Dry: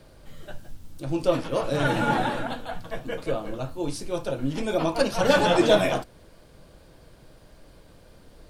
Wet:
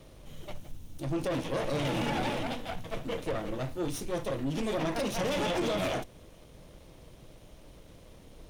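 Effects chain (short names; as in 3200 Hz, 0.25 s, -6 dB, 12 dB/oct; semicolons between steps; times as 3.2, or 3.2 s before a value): minimum comb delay 0.32 ms; limiter -18 dBFS, peak gain reduction 10.5 dB; soft clip -25.5 dBFS, distortion -13 dB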